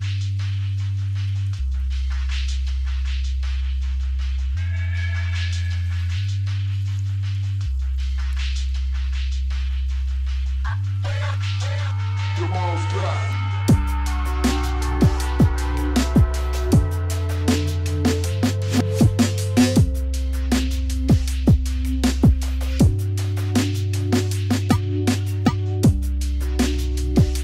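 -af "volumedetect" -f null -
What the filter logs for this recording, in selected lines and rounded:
mean_volume: -20.2 dB
max_volume: -7.4 dB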